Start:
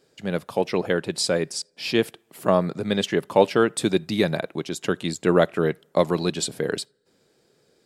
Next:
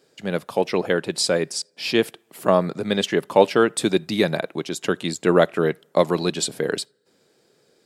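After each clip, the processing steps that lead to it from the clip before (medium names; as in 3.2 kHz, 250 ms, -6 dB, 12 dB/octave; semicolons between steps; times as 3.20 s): high-pass 160 Hz 6 dB/octave; trim +2.5 dB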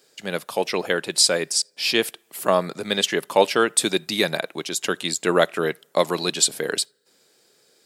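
tilt EQ +2.5 dB/octave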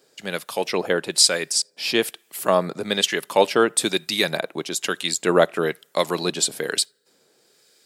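harmonic tremolo 1.1 Hz, depth 50%, crossover 1.3 kHz; trim +2.5 dB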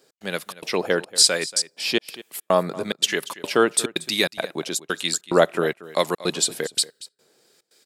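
trance gate "x.xxx.xxx" 144 bpm -60 dB; delay 233 ms -18 dB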